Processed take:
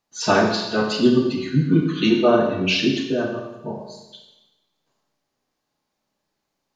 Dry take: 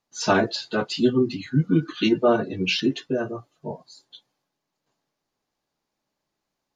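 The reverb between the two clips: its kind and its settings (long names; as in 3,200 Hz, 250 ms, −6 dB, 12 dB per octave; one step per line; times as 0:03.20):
four-comb reverb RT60 1 s, combs from 29 ms, DRR 2 dB
level +1.5 dB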